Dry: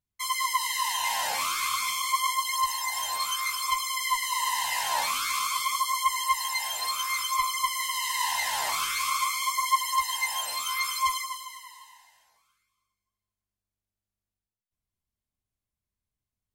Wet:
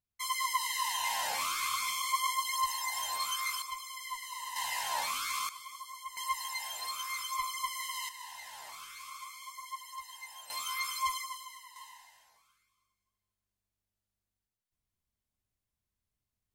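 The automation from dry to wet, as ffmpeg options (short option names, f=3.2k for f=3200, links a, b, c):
-af "asetnsamples=n=441:p=0,asendcmd='3.62 volume volume -13.5dB;4.56 volume volume -6.5dB;5.49 volume volume -18.5dB;6.17 volume volume -8.5dB;8.09 volume volume -18.5dB;10.5 volume volume -6.5dB;11.76 volume volume 0dB',volume=-5dB"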